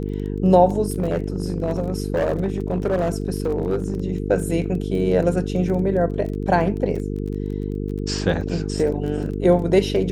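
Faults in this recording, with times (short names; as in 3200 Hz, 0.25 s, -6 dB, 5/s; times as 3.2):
buzz 50 Hz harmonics 9 -26 dBFS
crackle 16/s -29 dBFS
0.86–4 clipped -16 dBFS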